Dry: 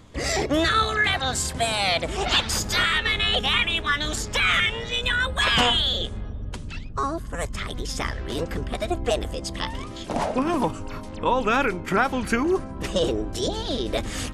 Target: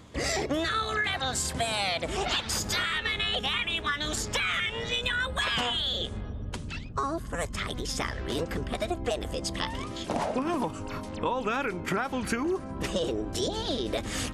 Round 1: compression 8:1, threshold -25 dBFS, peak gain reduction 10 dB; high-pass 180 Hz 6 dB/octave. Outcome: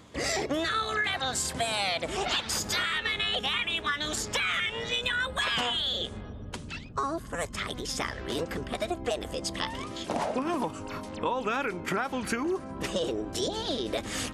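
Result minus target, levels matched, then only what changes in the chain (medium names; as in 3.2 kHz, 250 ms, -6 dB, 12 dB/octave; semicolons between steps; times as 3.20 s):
125 Hz band -4.0 dB
change: high-pass 66 Hz 6 dB/octave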